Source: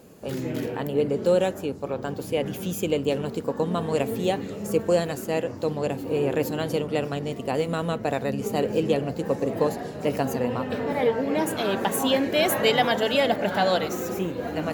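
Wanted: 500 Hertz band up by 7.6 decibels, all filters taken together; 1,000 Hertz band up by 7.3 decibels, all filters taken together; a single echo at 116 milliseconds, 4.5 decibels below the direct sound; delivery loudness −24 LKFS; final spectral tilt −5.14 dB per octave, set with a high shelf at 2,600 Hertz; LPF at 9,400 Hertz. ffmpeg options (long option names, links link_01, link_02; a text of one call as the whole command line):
ffmpeg -i in.wav -af "lowpass=9400,equalizer=frequency=500:width_type=o:gain=7,equalizer=frequency=1000:width_type=o:gain=8,highshelf=frequency=2600:gain=-7.5,aecho=1:1:116:0.596,volume=-6dB" out.wav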